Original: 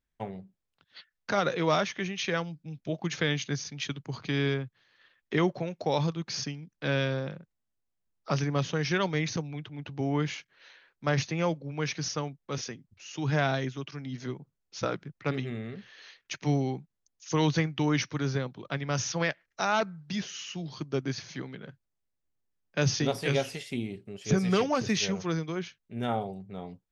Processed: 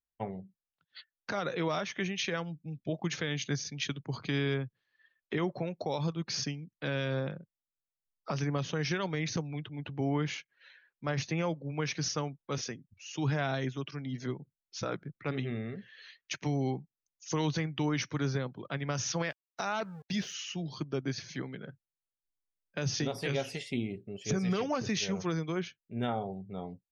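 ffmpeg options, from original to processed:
-filter_complex "[0:a]asettb=1/sr,asplit=3[a][b][c];[a]atrim=end=19.244[d];[b]atrim=start=19.24:end=20.34,asetpts=PTS-STARTPTS,afade=t=in:d=0.004:c=qsin,afade=t=out:st=1.096:d=0.004:c=qsin,aeval=exprs='val(0)*gte(abs(val(0)),0.00473)':c=same[e];[c]atrim=start=20.336[f];[d][e]acrossfade=d=0.004:c1=hsin:c2=qsin[g];[g][f]acrossfade=d=0.004:c1=qsin:c2=hsin,alimiter=limit=-22dB:level=0:latency=1:release=154,afftdn=nr=16:nf=-54"

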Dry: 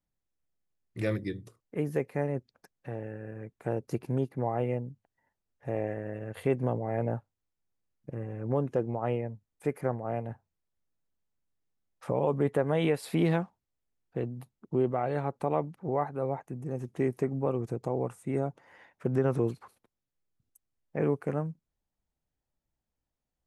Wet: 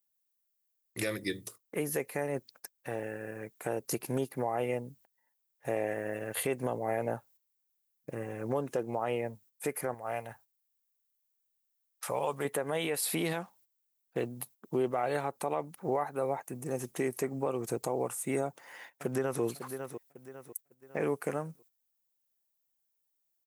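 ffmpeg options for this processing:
-filter_complex "[0:a]asettb=1/sr,asplit=3[a][b][c];[a]atrim=end=9.944[d];[b]atrim=start=9.94:end=12.45,asetpts=PTS-STARTPTS,afade=t=in:d=0.004:c=qsin,afade=t=out:st=2.506:d=0.004:c=qsin,equalizer=f=280:t=o:w=2.4:g=-11[e];[c]atrim=start=12.446[f];[d][e]acrossfade=d=0.004:c1=hsin:c2=qsin[g];[g][f]acrossfade=d=0.004:c1=qsin:c2=hsin,asplit=2[h][i];[i]afade=t=in:st=18.45:d=0.01,afade=t=out:st=19.42:d=0.01,aecho=0:1:550|1100|1650|2200:0.188365|0.075346|0.0301384|0.0120554[j];[h][j]amix=inputs=2:normalize=0,agate=range=-11dB:threshold=-57dB:ratio=16:detection=peak,aemphasis=mode=production:type=riaa,alimiter=level_in=2.5dB:limit=-24dB:level=0:latency=1:release=225,volume=-2.5dB,volume=5.5dB"

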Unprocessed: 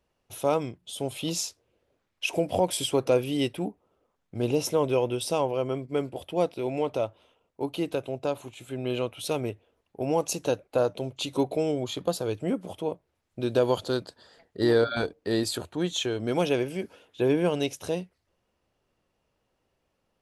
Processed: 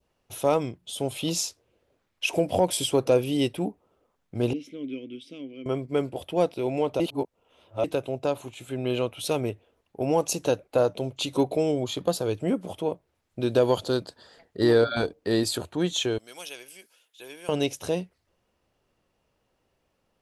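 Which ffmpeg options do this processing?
-filter_complex "[0:a]asettb=1/sr,asplit=3[a][b][c];[a]atrim=end=4.534[d];[b]atrim=start=4.53:end=5.66,asetpts=PTS-STARTPTS,afade=t=in:d=0.004:c=qsin,afade=t=out:st=1.126:d=0.004:c=qsin,asplit=3[e][f][g];[e]bandpass=f=270:t=q:w=8,volume=0dB[h];[f]bandpass=f=2.29k:t=q:w=8,volume=-6dB[i];[g]bandpass=f=3.01k:t=q:w=8,volume=-9dB[j];[h][i][j]amix=inputs=3:normalize=0[k];[c]atrim=start=5.656[l];[d][k]acrossfade=d=0.004:c1=hsin:c2=qsin[m];[m][l]acrossfade=d=0.004:c1=qsin:c2=hsin,asettb=1/sr,asplit=3[n][o][p];[n]atrim=end=16.184[q];[o]atrim=start=16.18:end=17.49,asetpts=PTS-STARTPTS,afade=t=in:d=0.004:c=qsin,afade=t=out:st=1.306:d=0.004:c=qsin,aderivative[r];[p]atrim=start=17.486[s];[q][r]acrossfade=d=0.004:c1=hsin:c2=qsin[t];[t][s]acrossfade=d=0.004:c1=qsin:c2=hsin,asplit=3[u][v][w];[u]atrim=end=7.002[x];[v]atrim=start=6.998:end=7.842,asetpts=PTS-STARTPTS,areverse[y];[w]atrim=start=7.838[z];[x][y]acrossfade=d=0.004:c1=hsin:c2=hsin[aa];[aa][z]acrossfade=d=0.004:c1=hsin:c2=hsin,adynamicequalizer=threshold=0.00794:dfrequency=1700:dqfactor=1.1:tfrequency=1700:tqfactor=1.1:attack=5:release=100:ratio=0.375:range=2:mode=cutabove:tftype=bell,acontrast=38,volume=-3dB"

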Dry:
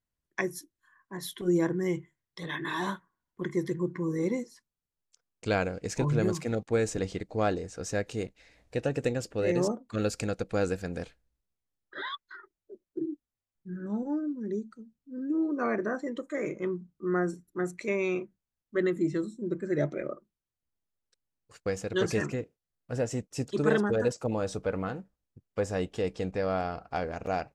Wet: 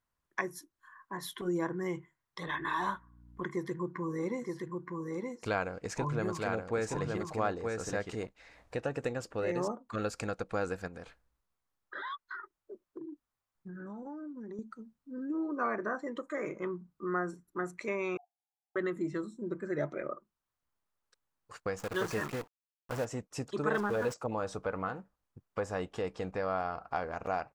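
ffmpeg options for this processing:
-filter_complex "[0:a]asettb=1/sr,asplit=3[a][b][c];[a]atrim=end=2.474[d];[b]atrim=start=2.47:end=3.44,asetpts=PTS-STARTPTS,afade=t=in:d=0.004:c=qsin,afade=t=out:st=0.966:d=0.004:c=qsin,aeval=exprs='val(0)+0.002*(sin(2*PI*60*n/s)+sin(2*PI*2*60*n/s)/2+sin(2*PI*3*60*n/s)/3+sin(2*PI*4*60*n/s)/4+sin(2*PI*5*60*n/s)/5)':c=same[e];[c]atrim=start=3.436[f];[d][e]acrossfade=d=0.004:c1=hsin:c2=qsin[g];[g][f]acrossfade=d=0.004:c1=qsin:c2=hsin,asplit=3[h][i][j];[h]afade=t=out:st=4.41:d=0.02[k];[i]aecho=1:1:921:0.596,afade=t=in:st=4.41:d=0.02,afade=t=out:st=8.24:d=0.02[l];[j]afade=t=in:st=8.24:d=0.02[m];[k][l][m]amix=inputs=3:normalize=0,asettb=1/sr,asplit=3[n][o][p];[n]atrim=end=10.874[q];[o]atrim=start=10.87:end=14.59,asetpts=PTS-STARTPTS,afade=t=in:d=0.004:c=qsin,afade=t=out:st=3.716:d=0.004:c=qsin,acompressor=threshold=-40dB:ratio=5:attack=3.2:release=140:knee=1:detection=peak[r];[p]atrim=start=14.586[s];[q][r]acrossfade=d=0.004:c1=hsin:c2=qsin[t];[t][s]acrossfade=d=0.004:c1=qsin:c2=hsin,asettb=1/sr,asplit=3[u][v][w];[u]atrim=end=18.174[x];[v]atrim=start=18.17:end=18.76,asetpts=PTS-STARTPTS,afade=t=in:d=0.004:c=qsin,afade=t=out:st=0.586:d=0.004:c=qsin,asuperpass=centerf=770:order=20:qfactor=4.3[y];[w]atrim=start=18.756[z];[x][y]acrossfade=d=0.004:c1=hsin:c2=qsin[aa];[aa][z]acrossfade=d=0.004:c1=qsin:c2=hsin,asplit=3[ab][ac][ad];[ab]afade=t=out:st=21.78:d=0.02[ae];[ac]acrusher=bits=7:dc=4:mix=0:aa=0.000001,afade=t=in:st=21.78:d=0.02,afade=t=out:st=23.04:d=0.02[af];[ad]afade=t=in:st=23.04:d=0.02[ag];[ae][af][ag]amix=inputs=3:normalize=0,asettb=1/sr,asplit=3[ah][ai][aj];[ah]atrim=end=23.744[ak];[ai]atrim=start=23.74:end=24.14,asetpts=PTS-STARTPTS,afade=t=in:d=0.004:c=qsin,afade=t=out:st=0.396:d=0.004:c=qsin,aeval=exprs='val(0)+0.5*0.0188*sgn(val(0))':c=same[al];[aj]atrim=start=24.136[am];[ak][al]acrossfade=d=0.004:c1=hsin:c2=qsin[an];[an][am]acrossfade=d=0.004:c1=qsin:c2=hsin,equalizer=f=1.1k:w=1:g=11.5,acompressor=threshold=-45dB:ratio=1.5"

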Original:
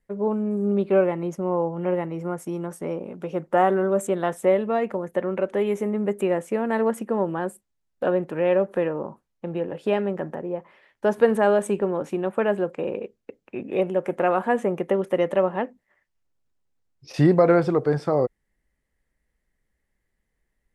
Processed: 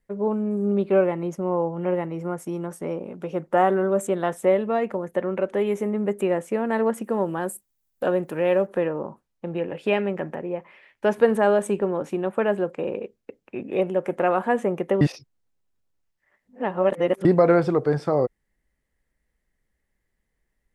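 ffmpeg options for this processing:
-filter_complex "[0:a]asettb=1/sr,asplit=3[a][b][c];[a]atrim=end=7.044[d];[b]atrim=start=7.04:end=8.67,asetpts=PTS-STARTPTS,afade=t=in:d=0.004:c=qsin,afade=t=out:st=1.626:d=0.004:c=qsin,aemphasis=mode=production:type=50fm[e];[c]atrim=start=8.666[f];[d][e]acrossfade=d=0.004:c1=hsin:c2=qsin[g];[g][f]acrossfade=d=0.004:c1=qsin:c2=hsin,asettb=1/sr,asplit=3[h][i][j];[h]atrim=end=9.584[k];[i]atrim=start=9.58:end=11.18,asetpts=PTS-STARTPTS,afade=t=in:d=0.004:c=qsin,afade=t=out:st=1.596:d=0.004:c=qsin,equalizer=f=2.4k:t=o:w=0.68:g=8.5[l];[j]atrim=start=11.176[m];[k][l]acrossfade=d=0.004:c1=hsin:c2=qsin[n];[n][m]acrossfade=d=0.004:c1=qsin:c2=hsin,asplit=3[o][p][q];[o]atrim=end=15.012[r];[p]atrim=start=15.008:end=17.252,asetpts=PTS-STARTPTS,areverse[s];[q]atrim=start=17.248[t];[r][s]acrossfade=d=0.004:c1=hsin:c2=hsin[u];[u][t]acrossfade=d=0.004:c1=hsin:c2=hsin"

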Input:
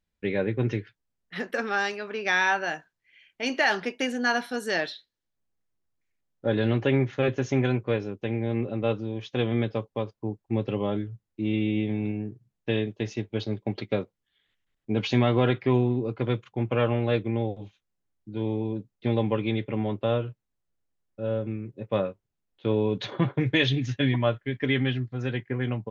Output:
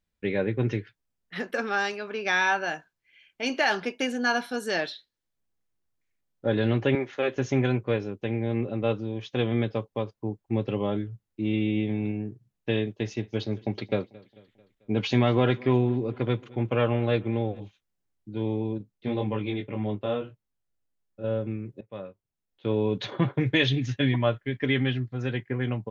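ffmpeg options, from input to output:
-filter_complex "[0:a]asettb=1/sr,asplit=3[a][b][c];[a]atrim=end=1.414[d];[b]atrim=start=1.41:end=4.93,asetpts=PTS-STARTPTS,afade=t=in:d=0.004:c=qsin,afade=t=out:st=3.516:d=0.004:c=qsin,bandreject=f=1.9k:w=12[e];[c]atrim=start=4.926[f];[d][e]acrossfade=d=0.004:c1=hsin:c2=qsin[g];[g][f]acrossfade=d=0.004:c1=qsin:c2=hsin,asettb=1/sr,asplit=3[h][i][j];[h]atrim=end=6.954[k];[i]atrim=start=6.95:end=7.36,asetpts=PTS-STARTPTS,afade=t=in:d=0.004:c=qsin,afade=t=out:st=0.406:d=0.004:c=qsin,highpass=350[l];[j]atrim=start=7.356[m];[k][l]acrossfade=d=0.004:c1=hsin:c2=qsin[n];[n][m]acrossfade=d=0.004:c1=qsin:c2=hsin,asettb=1/sr,asplit=3[o][p][q];[o]atrim=end=12.914[r];[p]atrim=start=12.91:end=17.6,asetpts=PTS-STARTPTS,afade=t=in:d=0.004:c=qsin,afade=t=out:st=4.686:d=0.004:c=qsin,aecho=1:1:221|442|663|884:0.0708|0.0389|0.0214|0.0118,atrim=end_sample=206829[s];[q]atrim=start=17.596[t];[r][s]acrossfade=d=0.004:c1=hsin:c2=qsin[u];[u][t]acrossfade=d=0.004:c1=qsin:c2=hsin,asettb=1/sr,asplit=3[v][w][x];[v]atrim=end=18.784[y];[w]atrim=start=18.78:end=21.24,asetpts=PTS-STARTPTS,afade=t=in:d=0.004:c=qsin,afade=t=out:st=2.456:d=0.004:c=qsin,flanger=delay=19:depth=2.1:speed=1.8[z];[x]atrim=start=21.236[aa];[y][z]acrossfade=d=0.004:c1=hsin:c2=qsin[ab];[ab][aa]acrossfade=d=0.004:c1=qsin:c2=hsin,asplit=2[ac][ad];[ac]atrim=end=21.81,asetpts=PTS-STARTPTS,afade=t=out:st=21.806:d=0.004:c=hsin:silence=0.0944061[ae];[ad]atrim=start=21.81,asetpts=PTS-STARTPTS,afade=t=in:d=1.1:silence=0.0944061[af];[ae][af]concat=n=2:v=0:a=1"

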